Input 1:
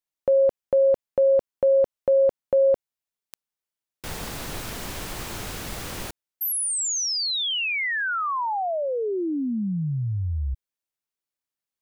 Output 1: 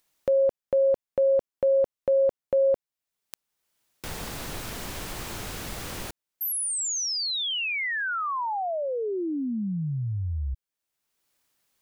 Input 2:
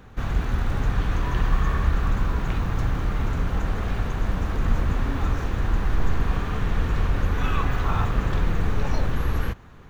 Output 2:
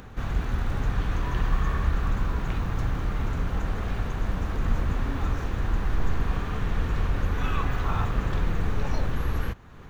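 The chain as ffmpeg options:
ffmpeg -i in.wav -af "acompressor=mode=upward:threshold=-24dB:ratio=1.5:attack=3.8:release=420:knee=2.83:detection=peak,volume=-3dB" out.wav

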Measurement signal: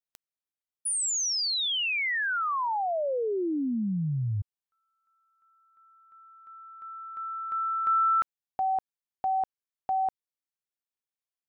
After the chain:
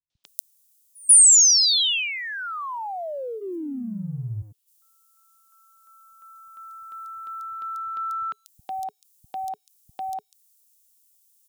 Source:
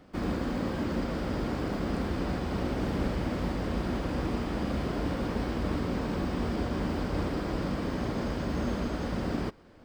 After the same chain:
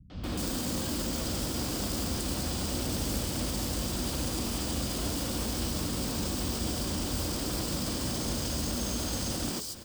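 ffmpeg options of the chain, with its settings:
ffmpeg -i in.wav -filter_complex "[0:a]highpass=frequency=54:poles=1,bass=frequency=250:gain=6,treble=frequency=4000:gain=12,bandreject=frequency=420:width=12,acompressor=threshold=-43dB:ratio=2:attack=0.81:release=41:detection=peak,aexciter=amount=3.6:drive=4.7:freq=2800,acrossover=split=160|4000[link_01][link_02][link_03];[link_02]adelay=100[link_04];[link_03]adelay=240[link_05];[link_01][link_04][link_05]amix=inputs=3:normalize=0,volume=6dB" out.wav

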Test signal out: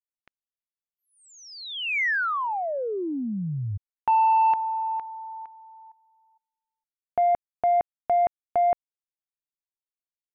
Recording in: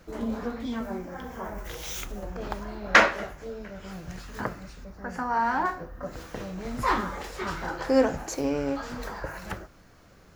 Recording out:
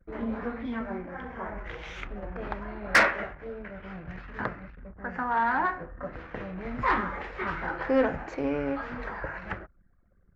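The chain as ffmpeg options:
ffmpeg -i in.wav -af "lowpass=frequency=2100:width_type=q:width=1.8,asoftclip=type=tanh:threshold=-12dB,anlmdn=0.0251,volume=-1.5dB" out.wav

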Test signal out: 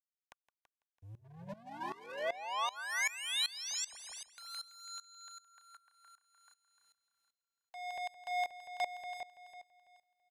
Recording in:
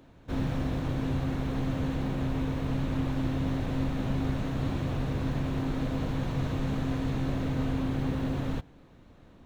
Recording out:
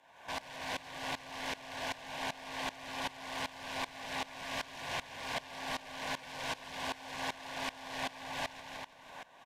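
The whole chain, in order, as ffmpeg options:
ffmpeg -i in.wav -filter_complex "[0:a]asplit=2[link_01][link_02];[link_02]highpass=frequency=720:poles=1,volume=28dB,asoftclip=type=tanh:threshold=-17.5dB[link_03];[link_01][link_03]amix=inputs=2:normalize=0,lowpass=frequency=5900:poles=1,volume=-6dB,bandreject=frequency=60:width_type=h:width=6,bandreject=frequency=120:width_type=h:width=6,bandreject=frequency=180:width_type=h:width=6,bandreject=frequency=240:width_type=h:width=6,bandreject=frequency=300:width_type=h:width=6,bandreject=frequency=360:width_type=h:width=6,bandreject=frequency=420:width_type=h:width=6,bandreject=frequency=480:width_type=h:width=6,bandreject=frequency=540:width_type=h:width=6,acrossover=split=5700[link_04][link_05];[link_05]acompressor=threshold=-51dB:ratio=4:attack=1:release=60[link_06];[link_04][link_06]amix=inputs=2:normalize=0,equalizer=frequency=4400:width_type=o:width=0.26:gain=-8,acrossover=split=510|1500[link_07][link_08][link_09];[link_08]acompressor=threshold=-40dB:ratio=8[link_10];[link_07][link_10][link_09]amix=inputs=3:normalize=0,aeval=exprs='0.0501*(abs(mod(val(0)/0.0501+3,4)-2)-1)':channel_layout=same,lowshelf=frequency=530:width_type=q:width=1.5:gain=-12,aeval=exprs='sgn(val(0))*max(abs(val(0))-0.00168,0)':channel_layout=same,asuperstop=centerf=1300:order=8:qfactor=5.3,asplit=2[link_11][link_12];[link_12]aecho=0:1:166|332|498|664|830|996|1162|1328:0.501|0.296|0.174|0.103|0.0607|0.0358|0.0211|0.0125[link_13];[link_11][link_13]amix=inputs=2:normalize=0,aresample=32000,aresample=44100,aeval=exprs='val(0)*pow(10,-20*if(lt(mod(-2.6*n/s,1),2*abs(-2.6)/1000),1-mod(-2.6*n/s,1)/(2*abs(-2.6)/1000),(mod(-2.6*n/s,1)-2*abs(-2.6)/1000)/(1-2*abs(-2.6)/1000))/20)':channel_layout=same,volume=-1dB" out.wav

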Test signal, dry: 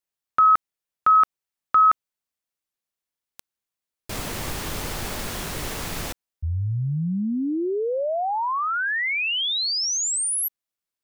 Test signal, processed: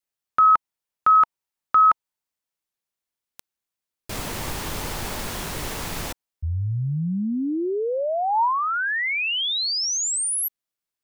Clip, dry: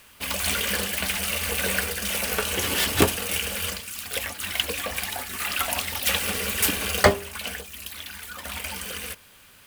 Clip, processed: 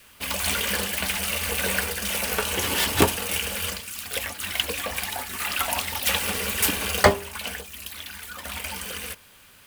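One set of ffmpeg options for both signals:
ffmpeg -i in.wav -af "adynamicequalizer=threshold=0.00708:dfrequency=920:dqfactor=4.5:tfrequency=920:tqfactor=4.5:attack=5:release=100:ratio=0.375:range=3:mode=boostabove:tftype=bell" out.wav

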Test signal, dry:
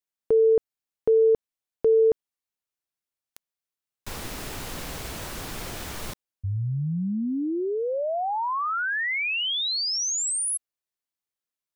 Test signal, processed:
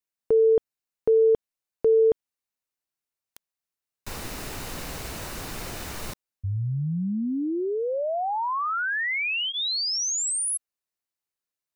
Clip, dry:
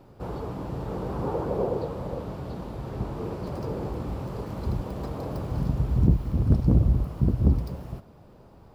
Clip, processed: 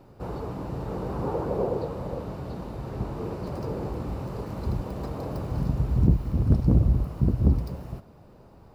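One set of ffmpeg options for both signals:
ffmpeg -i in.wav -af "bandreject=frequency=3300:width=15" out.wav

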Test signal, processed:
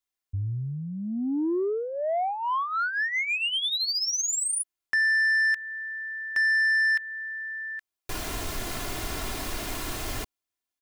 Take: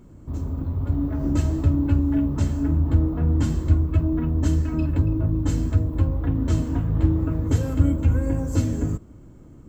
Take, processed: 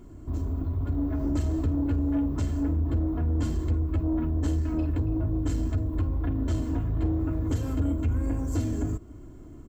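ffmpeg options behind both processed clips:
ffmpeg -i in.wav -af "acompressor=threshold=-29dB:ratio=1.5,aecho=1:1:2.9:0.5,asoftclip=type=tanh:threshold=-19.5dB" out.wav

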